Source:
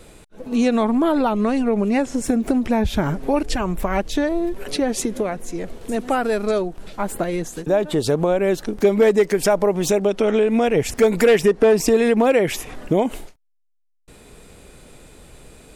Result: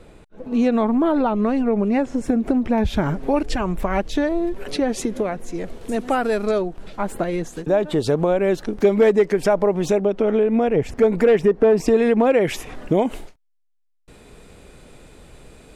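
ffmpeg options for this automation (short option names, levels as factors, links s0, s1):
-af "asetnsamples=n=441:p=0,asendcmd='2.78 lowpass f 4300;5.54 lowpass f 7900;6.49 lowpass f 4000;9.1 lowpass f 2300;10.01 lowpass f 1100;11.77 lowpass f 2100;12.41 lowpass f 5100',lowpass=f=1800:p=1"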